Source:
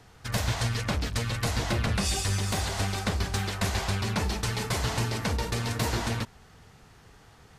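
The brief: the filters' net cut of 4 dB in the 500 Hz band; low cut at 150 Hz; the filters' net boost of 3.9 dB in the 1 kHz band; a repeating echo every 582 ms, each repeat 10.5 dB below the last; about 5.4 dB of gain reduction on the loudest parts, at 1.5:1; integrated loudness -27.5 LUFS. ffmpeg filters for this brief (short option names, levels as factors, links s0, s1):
-af "highpass=150,equalizer=f=500:t=o:g=-7.5,equalizer=f=1000:t=o:g=7,acompressor=threshold=0.01:ratio=1.5,aecho=1:1:582|1164|1746:0.299|0.0896|0.0269,volume=2.37"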